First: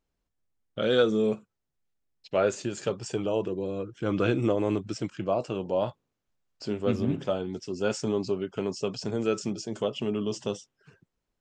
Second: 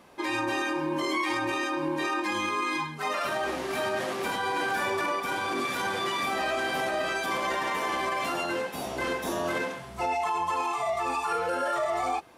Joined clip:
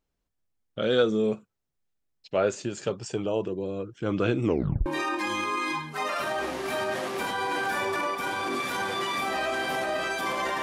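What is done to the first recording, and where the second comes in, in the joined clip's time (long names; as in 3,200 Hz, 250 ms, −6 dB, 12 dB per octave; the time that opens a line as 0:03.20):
first
0:04.45: tape stop 0.41 s
0:04.86: continue with second from 0:01.91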